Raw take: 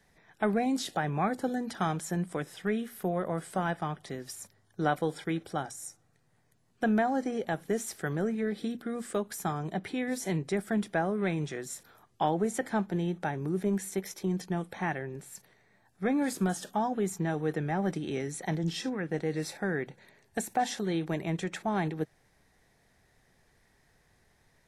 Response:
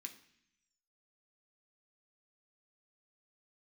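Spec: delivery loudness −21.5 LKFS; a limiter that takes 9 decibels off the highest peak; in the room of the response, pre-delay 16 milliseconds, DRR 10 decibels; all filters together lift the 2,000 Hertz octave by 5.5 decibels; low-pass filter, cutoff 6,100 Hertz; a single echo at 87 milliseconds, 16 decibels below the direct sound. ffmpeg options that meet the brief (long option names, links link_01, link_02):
-filter_complex "[0:a]lowpass=6100,equalizer=frequency=2000:width_type=o:gain=7,alimiter=limit=-20dB:level=0:latency=1,aecho=1:1:87:0.158,asplit=2[link_01][link_02];[1:a]atrim=start_sample=2205,adelay=16[link_03];[link_02][link_03]afir=irnorm=-1:irlink=0,volume=-5dB[link_04];[link_01][link_04]amix=inputs=2:normalize=0,volume=10.5dB"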